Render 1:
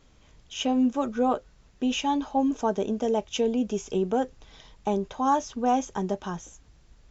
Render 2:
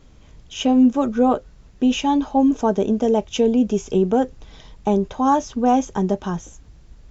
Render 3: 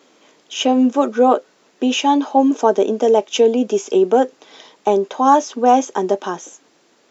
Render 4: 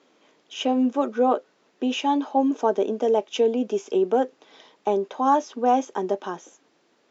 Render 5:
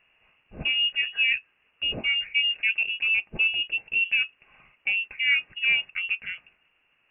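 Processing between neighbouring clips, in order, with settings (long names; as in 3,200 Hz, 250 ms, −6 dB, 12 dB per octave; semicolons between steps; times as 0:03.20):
low-shelf EQ 470 Hz +7 dB; level +3.5 dB
high-pass filter 300 Hz 24 dB per octave; level +6 dB
high-frequency loss of the air 84 metres; level −7 dB
voice inversion scrambler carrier 3,100 Hz; level −3.5 dB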